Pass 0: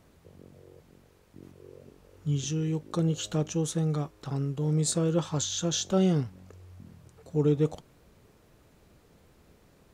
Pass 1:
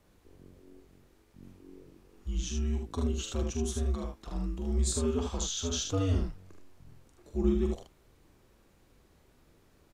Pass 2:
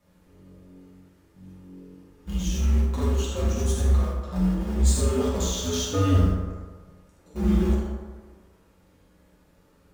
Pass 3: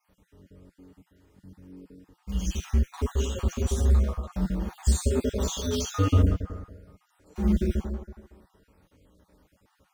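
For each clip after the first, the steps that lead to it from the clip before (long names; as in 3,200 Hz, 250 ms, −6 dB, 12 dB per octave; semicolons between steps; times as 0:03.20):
frequency shifter −90 Hz; on a send: ambience of single reflections 43 ms −6.5 dB, 76 ms −4.5 dB; on the sum: level −5 dB
in parallel at −5 dB: centre clipping without the shift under −31 dBFS; on the sum: convolution reverb RT60 1.5 s, pre-delay 3 ms, DRR −7.5 dB; level −4.5 dB
time-frequency cells dropped at random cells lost 35%; notch comb filter 170 Hz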